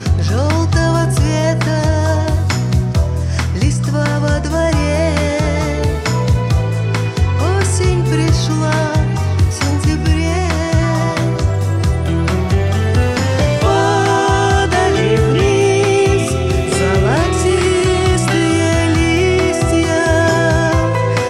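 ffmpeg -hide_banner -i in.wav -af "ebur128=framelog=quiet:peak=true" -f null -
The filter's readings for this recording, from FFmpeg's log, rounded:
Integrated loudness:
  I:         -14.5 LUFS
  Threshold: -24.5 LUFS
Loudness range:
  LRA:         2.5 LU
  Threshold: -34.6 LUFS
  LRA low:   -15.7 LUFS
  LRA high:  -13.2 LUFS
True peak:
  Peak:       -2.7 dBFS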